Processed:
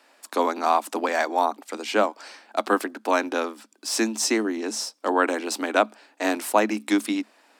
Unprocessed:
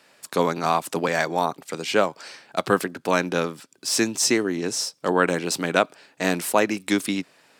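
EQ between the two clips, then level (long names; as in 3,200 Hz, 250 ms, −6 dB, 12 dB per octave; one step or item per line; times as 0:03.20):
Chebyshev high-pass with heavy ripple 210 Hz, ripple 6 dB
+2.5 dB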